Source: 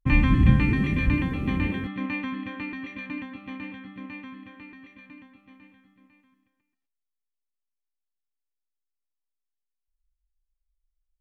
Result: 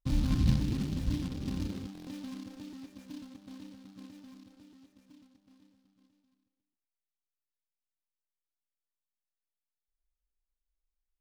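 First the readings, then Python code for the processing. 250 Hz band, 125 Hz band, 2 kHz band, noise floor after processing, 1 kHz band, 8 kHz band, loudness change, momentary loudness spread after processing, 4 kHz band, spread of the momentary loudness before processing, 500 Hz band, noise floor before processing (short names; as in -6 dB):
-9.0 dB, -8.5 dB, -22.5 dB, under -85 dBFS, -16.0 dB, n/a, -9.0 dB, 22 LU, -4.5 dB, 21 LU, -10.0 dB, -83 dBFS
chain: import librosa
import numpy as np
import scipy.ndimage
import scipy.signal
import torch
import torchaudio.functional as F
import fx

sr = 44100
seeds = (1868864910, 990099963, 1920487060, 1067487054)

y = scipy.ndimage.median_filter(x, 41, mode='constant')
y = fx.buffer_glitch(y, sr, at_s=(1.93,), block=1024, repeats=5)
y = fx.noise_mod_delay(y, sr, seeds[0], noise_hz=3600.0, depth_ms=0.08)
y = y * 10.0 ** (-8.5 / 20.0)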